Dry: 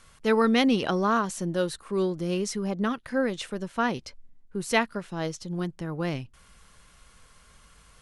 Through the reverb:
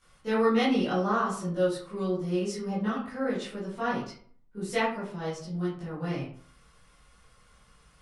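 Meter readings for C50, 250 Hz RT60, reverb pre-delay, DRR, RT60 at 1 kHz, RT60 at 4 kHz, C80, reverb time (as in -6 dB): 2.5 dB, 0.55 s, 14 ms, -12.5 dB, 0.50 s, 0.30 s, 8.0 dB, 0.50 s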